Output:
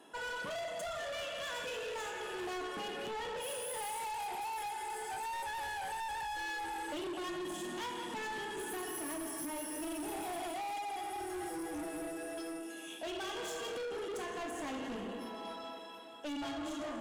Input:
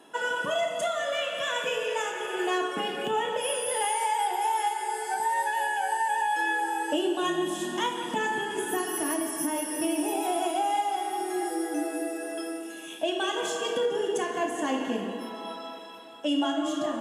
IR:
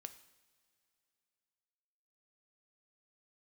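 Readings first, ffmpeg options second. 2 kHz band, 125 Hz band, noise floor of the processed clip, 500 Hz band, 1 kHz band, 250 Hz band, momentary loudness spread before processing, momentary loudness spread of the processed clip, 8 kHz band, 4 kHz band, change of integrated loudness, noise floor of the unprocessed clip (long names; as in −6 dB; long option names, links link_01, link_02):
−10.5 dB, −6.0 dB, −46 dBFS, −11.5 dB, −12.0 dB, −11.5 dB, 6 LU, 3 LU, −10.0 dB, −10.0 dB, −11.5 dB, −40 dBFS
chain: -af "asoftclip=type=tanh:threshold=-33dB,volume=-4.5dB"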